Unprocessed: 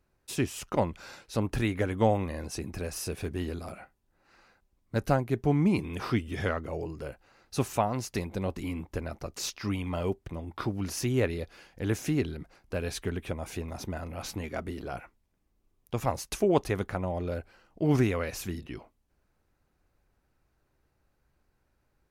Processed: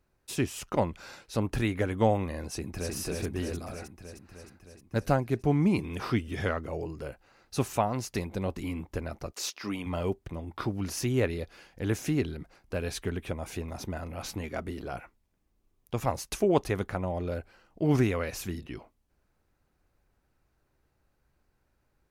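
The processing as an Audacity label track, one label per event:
2.480000	2.940000	delay throw 310 ms, feedback 70%, level −2 dB
9.310000	9.850000	high-pass filter 440 Hz → 160 Hz

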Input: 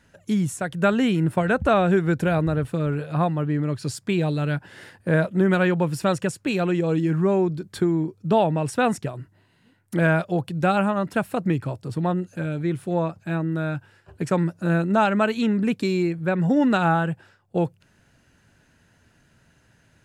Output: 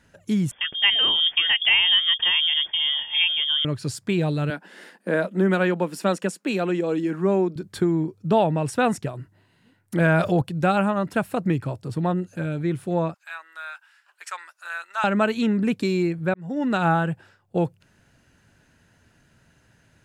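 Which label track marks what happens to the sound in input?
0.510000	3.650000	voice inversion scrambler carrier 3,400 Hz
4.500000	7.560000	elliptic high-pass filter 190 Hz, stop band 50 dB
10.000000	10.420000	envelope flattener amount 70%
13.140000	15.040000	high-pass filter 1,100 Hz 24 dB per octave
16.340000	16.880000	fade in

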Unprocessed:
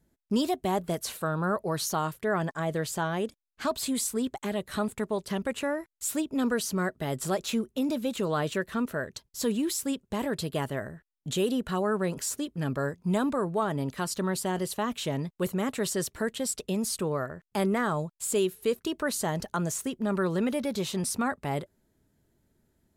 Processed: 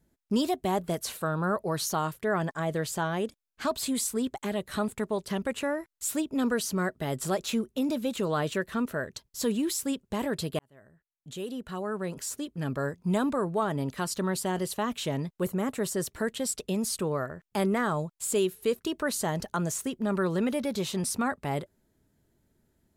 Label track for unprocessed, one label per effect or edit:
10.590000	13.050000	fade in
15.230000	16.070000	dynamic equaliser 3,600 Hz, up to −6 dB, over −49 dBFS, Q 0.71

